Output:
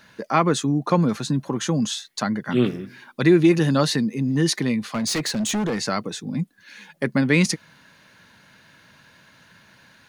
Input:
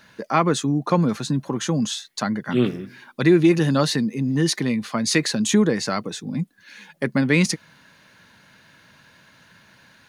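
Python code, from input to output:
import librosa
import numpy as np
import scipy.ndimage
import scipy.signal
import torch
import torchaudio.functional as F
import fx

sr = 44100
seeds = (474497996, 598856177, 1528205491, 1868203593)

y = fx.clip_hard(x, sr, threshold_db=-20.5, at=(4.94, 5.82))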